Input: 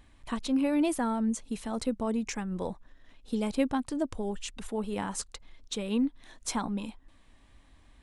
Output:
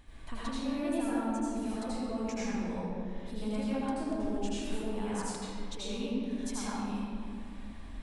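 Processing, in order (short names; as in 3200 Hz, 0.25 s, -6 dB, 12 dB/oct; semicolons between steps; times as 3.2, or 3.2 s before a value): compressor 2:1, threshold -53 dBFS, peak gain reduction 17 dB; reverb RT60 2.4 s, pre-delay 75 ms, DRR -10 dB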